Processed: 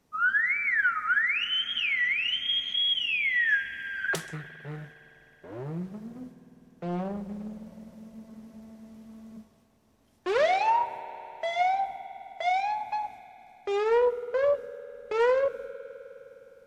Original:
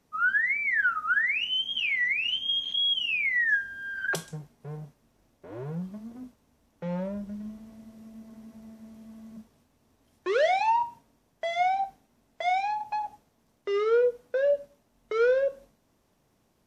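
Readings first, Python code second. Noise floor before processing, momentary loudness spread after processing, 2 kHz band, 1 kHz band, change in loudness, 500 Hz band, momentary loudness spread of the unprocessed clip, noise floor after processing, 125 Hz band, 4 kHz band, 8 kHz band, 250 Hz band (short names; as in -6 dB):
-69 dBFS, 18 LU, 0.0 dB, +0.5 dB, 0.0 dB, -0.5 dB, 17 LU, -63 dBFS, -0.5 dB, 0.0 dB, -0.5 dB, 0.0 dB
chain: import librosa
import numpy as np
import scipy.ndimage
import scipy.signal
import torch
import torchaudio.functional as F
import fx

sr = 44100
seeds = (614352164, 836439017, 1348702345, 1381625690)

y = fx.rev_spring(x, sr, rt60_s=3.9, pass_ms=(51,), chirp_ms=40, drr_db=13.0)
y = fx.doppler_dist(y, sr, depth_ms=0.54)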